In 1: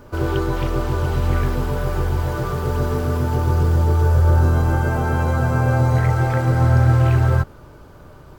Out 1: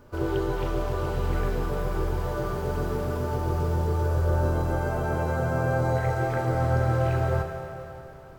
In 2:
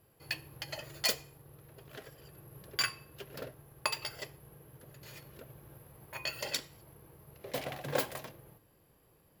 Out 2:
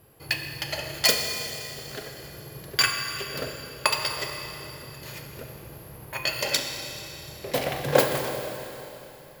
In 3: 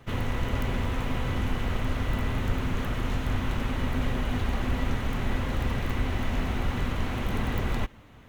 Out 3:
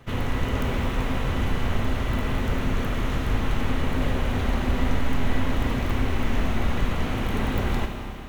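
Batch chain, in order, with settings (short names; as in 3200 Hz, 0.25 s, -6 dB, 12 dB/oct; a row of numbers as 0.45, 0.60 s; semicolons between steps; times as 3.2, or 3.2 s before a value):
dynamic EQ 490 Hz, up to +5 dB, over -35 dBFS, Q 0.98; Schroeder reverb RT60 3.2 s, combs from 27 ms, DRR 4 dB; match loudness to -27 LUFS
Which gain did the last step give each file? -9.0, +10.0, +2.0 dB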